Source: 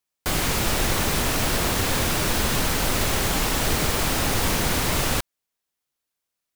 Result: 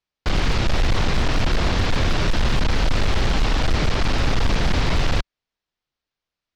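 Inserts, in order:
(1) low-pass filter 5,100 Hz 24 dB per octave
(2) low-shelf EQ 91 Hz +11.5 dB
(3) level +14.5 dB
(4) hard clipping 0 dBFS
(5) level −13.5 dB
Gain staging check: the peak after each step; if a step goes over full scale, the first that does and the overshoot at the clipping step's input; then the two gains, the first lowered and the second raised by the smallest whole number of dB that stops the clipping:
−11.0, −5.5, +9.0, 0.0, −13.5 dBFS
step 3, 9.0 dB
step 3 +5.5 dB, step 5 −4.5 dB

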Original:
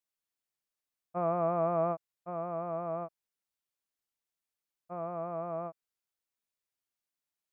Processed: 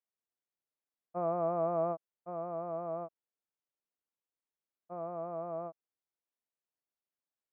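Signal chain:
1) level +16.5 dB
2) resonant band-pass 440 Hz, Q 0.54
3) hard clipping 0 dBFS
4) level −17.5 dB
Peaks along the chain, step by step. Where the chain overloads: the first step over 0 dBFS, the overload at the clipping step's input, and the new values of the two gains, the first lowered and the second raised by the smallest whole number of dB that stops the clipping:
−2.5, −4.0, −4.0, −21.5 dBFS
no step passes full scale

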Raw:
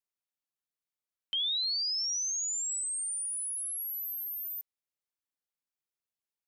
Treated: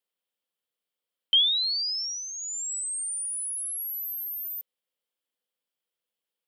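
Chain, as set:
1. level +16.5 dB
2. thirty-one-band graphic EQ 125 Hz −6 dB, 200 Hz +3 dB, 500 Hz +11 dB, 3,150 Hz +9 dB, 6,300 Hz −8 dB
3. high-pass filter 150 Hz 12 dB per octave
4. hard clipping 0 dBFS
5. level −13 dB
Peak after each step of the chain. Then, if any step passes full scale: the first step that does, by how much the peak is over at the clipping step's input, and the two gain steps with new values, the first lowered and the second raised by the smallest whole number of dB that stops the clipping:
−11.0, −2.0, −2.0, −2.0, −15.0 dBFS
no step passes full scale

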